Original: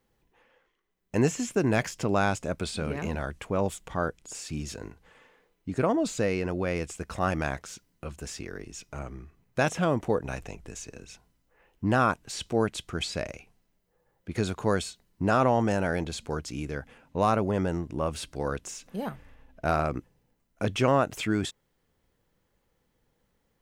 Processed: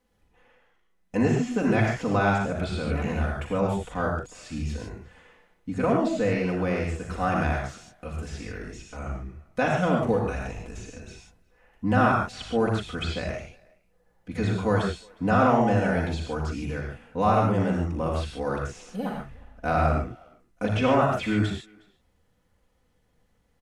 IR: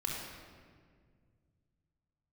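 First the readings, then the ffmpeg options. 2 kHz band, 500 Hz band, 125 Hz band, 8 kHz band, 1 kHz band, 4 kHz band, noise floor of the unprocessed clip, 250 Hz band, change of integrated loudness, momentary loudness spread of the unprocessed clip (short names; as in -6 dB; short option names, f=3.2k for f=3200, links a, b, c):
+3.0 dB, +2.0 dB, +4.5 dB, -7.0 dB, +3.5 dB, -1.0 dB, -74 dBFS, +3.5 dB, +3.0 dB, 15 LU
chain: -filter_complex "[0:a]asplit=2[a][b];[b]adelay=360,highpass=300,lowpass=3.4k,asoftclip=type=hard:threshold=-22dB,volume=-25dB[c];[a][c]amix=inputs=2:normalize=0[d];[1:a]atrim=start_sample=2205,atrim=end_sample=3969,asetrate=25137,aresample=44100[e];[d][e]afir=irnorm=-1:irlink=0,acrossover=split=4100[f][g];[g]acompressor=threshold=-48dB:ratio=4:attack=1:release=60[h];[f][h]amix=inputs=2:normalize=0,volume=-3dB"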